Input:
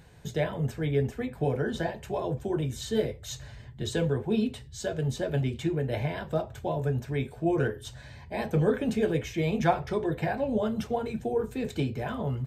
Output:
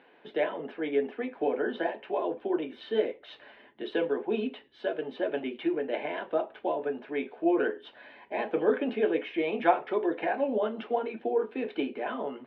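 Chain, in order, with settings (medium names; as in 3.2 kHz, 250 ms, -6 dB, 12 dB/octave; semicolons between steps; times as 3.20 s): elliptic band-pass 280–3000 Hz, stop band 40 dB; trim +2 dB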